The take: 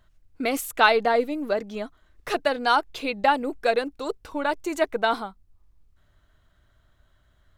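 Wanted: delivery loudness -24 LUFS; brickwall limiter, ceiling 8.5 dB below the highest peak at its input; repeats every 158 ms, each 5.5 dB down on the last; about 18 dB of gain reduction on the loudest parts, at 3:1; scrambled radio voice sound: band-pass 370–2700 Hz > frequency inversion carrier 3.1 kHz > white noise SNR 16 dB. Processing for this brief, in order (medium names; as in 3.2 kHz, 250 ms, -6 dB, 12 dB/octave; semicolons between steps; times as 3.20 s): compression 3:1, threshold -40 dBFS; peak limiter -30.5 dBFS; band-pass 370–2700 Hz; feedback delay 158 ms, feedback 53%, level -5.5 dB; frequency inversion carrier 3.1 kHz; white noise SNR 16 dB; trim +16 dB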